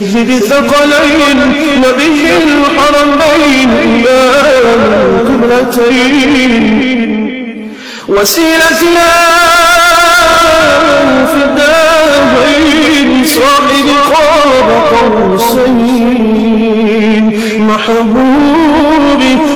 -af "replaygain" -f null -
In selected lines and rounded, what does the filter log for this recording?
track_gain = -10.8 dB
track_peak = 0.462